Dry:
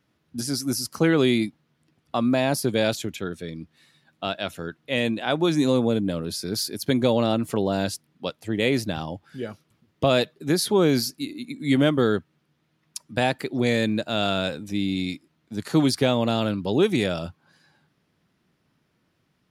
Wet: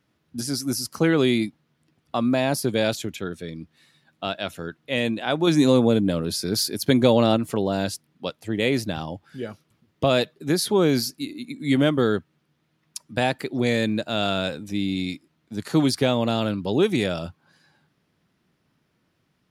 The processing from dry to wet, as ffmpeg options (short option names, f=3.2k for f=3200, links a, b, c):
-filter_complex "[0:a]asplit=3[a][b][c];[a]atrim=end=5.472[d];[b]atrim=start=5.468:end=7.372,asetpts=PTS-STARTPTS,volume=3.5dB[e];[c]atrim=start=7.368[f];[d][e]acrossfade=d=0.004:c1=hsin:c2=hsin[g];[g][f]acrossfade=d=0.004:c1=hsin:c2=hsin"